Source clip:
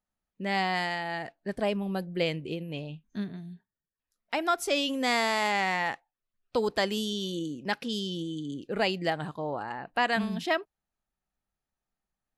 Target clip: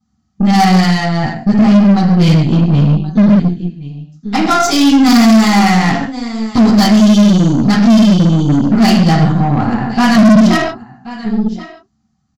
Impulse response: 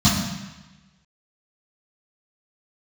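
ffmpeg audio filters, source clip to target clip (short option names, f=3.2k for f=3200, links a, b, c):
-filter_complex "[0:a]aecho=1:1:1078:0.112[a];[1:a]atrim=start_sample=2205,afade=t=out:st=0.25:d=0.01,atrim=end_sample=11466,asetrate=48510,aresample=44100[b];[a][b]afir=irnorm=-1:irlink=0,aresample=16000,asoftclip=type=tanh:threshold=-1.5dB,aresample=44100,aeval=exprs='0.891*(cos(1*acos(clip(val(0)/0.891,-1,1)))-cos(1*PI/2))+0.0794*(cos(6*acos(clip(val(0)/0.891,-1,1)))-cos(6*PI/2))':c=same,aexciter=amount=2.4:drive=1.5:freq=5.1k,volume=-2.5dB"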